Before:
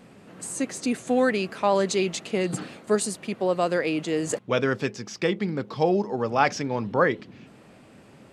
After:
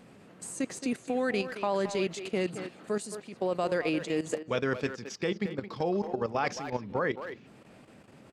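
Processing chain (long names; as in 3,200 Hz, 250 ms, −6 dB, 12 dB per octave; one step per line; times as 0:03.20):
output level in coarse steps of 13 dB
far-end echo of a speakerphone 220 ms, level −9 dB
level −2 dB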